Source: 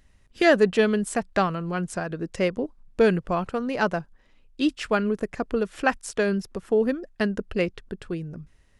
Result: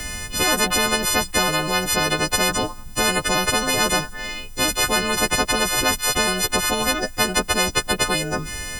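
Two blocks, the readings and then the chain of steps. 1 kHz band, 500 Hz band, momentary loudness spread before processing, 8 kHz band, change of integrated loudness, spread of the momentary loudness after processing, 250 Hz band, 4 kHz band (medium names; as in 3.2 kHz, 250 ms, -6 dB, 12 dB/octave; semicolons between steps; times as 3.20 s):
+7.0 dB, -1.5 dB, 13 LU, +21.5 dB, +5.5 dB, 5 LU, -1.5 dB, +17.5 dB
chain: partials quantised in pitch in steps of 3 st; spectrum-flattening compressor 10:1; trim -1 dB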